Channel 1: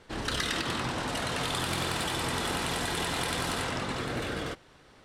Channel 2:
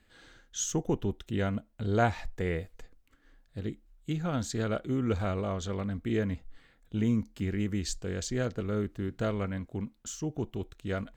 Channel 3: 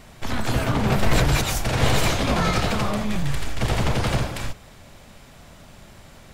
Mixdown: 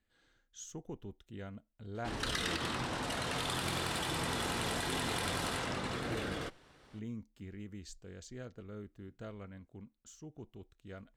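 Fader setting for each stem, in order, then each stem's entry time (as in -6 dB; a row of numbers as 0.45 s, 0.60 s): -5.0 dB, -15.5 dB, mute; 1.95 s, 0.00 s, mute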